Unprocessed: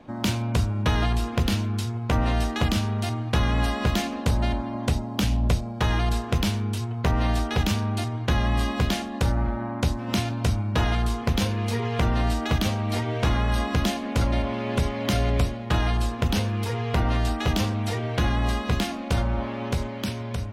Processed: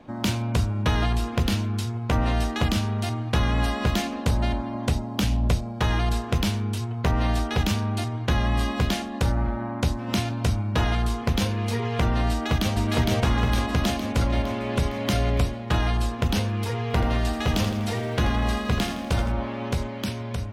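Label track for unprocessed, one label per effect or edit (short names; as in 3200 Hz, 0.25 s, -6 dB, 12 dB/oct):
12.300000	12.740000	echo throw 0.46 s, feedback 60%, level -1 dB
16.820000	19.320000	lo-fi delay 82 ms, feedback 55%, word length 9-bit, level -10 dB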